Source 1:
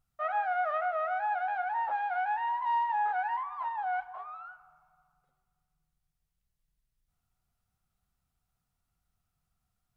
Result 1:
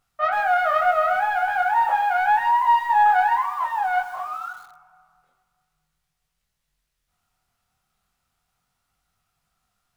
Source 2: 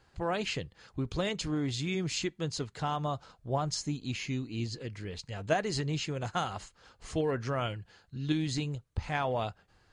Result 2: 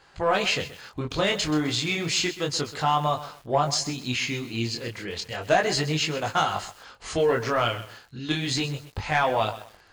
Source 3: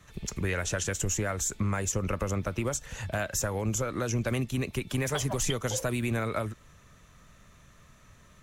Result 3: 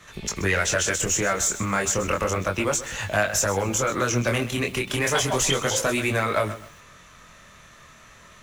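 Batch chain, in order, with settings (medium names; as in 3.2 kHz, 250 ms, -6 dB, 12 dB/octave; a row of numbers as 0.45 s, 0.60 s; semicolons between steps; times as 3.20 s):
overdrive pedal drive 11 dB, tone 6.2 kHz, clips at -15 dBFS; chorus 0.32 Hz, delay 19 ms, depth 7.2 ms; bit-crushed delay 129 ms, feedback 35%, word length 8-bit, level -13.5 dB; peak normalisation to -9 dBFS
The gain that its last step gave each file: +9.5 dB, +9.0 dB, +8.5 dB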